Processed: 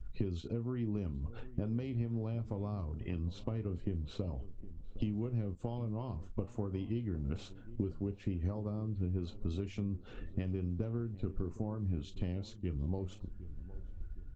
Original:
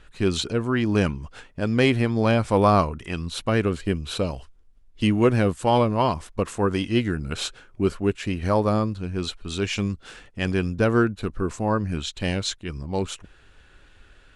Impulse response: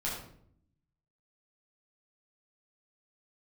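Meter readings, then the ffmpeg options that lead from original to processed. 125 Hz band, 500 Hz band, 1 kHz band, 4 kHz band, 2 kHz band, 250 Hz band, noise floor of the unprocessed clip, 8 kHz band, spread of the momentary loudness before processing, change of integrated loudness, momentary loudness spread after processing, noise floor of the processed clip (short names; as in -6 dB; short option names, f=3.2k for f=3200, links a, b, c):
-10.0 dB, -19.5 dB, -27.5 dB, -25.0 dB, -28.0 dB, -14.5 dB, -54 dBFS, under -25 dB, 10 LU, -15.0 dB, 8 LU, -50 dBFS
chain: -filter_complex "[0:a]equalizer=f=160:w=2.4:g=-3.5,acrossover=split=130|3000[a][b][c];[b]acompressor=threshold=-23dB:ratio=6[d];[a][d][c]amix=inputs=3:normalize=0,afftdn=nr=21:nf=-47,asplit=2[e][f];[f]adelay=34,volume=-12dB[g];[e][g]amix=inputs=2:normalize=0,acompressor=threshold=-39dB:ratio=12,tiltshelf=f=640:g=9,asplit=2[h][i];[i]adelay=762,lowpass=f=1k:p=1,volume=-16dB,asplit=2[j][k];[k]adelay=762,lowpass=f=1k:p=1,volume=0.48,asplit=2[l][m];[m]adelay=762,lowpass=f=1k:p=1,volume=0.48,asplit=2[n][o];[o]adelay=762,lowpass=f=1k:p=1,volume=0.48[p];[h][j][l][n][p]amix=inputs=5:normalize=0,aresample=16000,aresample=44100,bandreject=f=1.6k:w=7.4" -ar 48000 -c:a libopus -b:a 20k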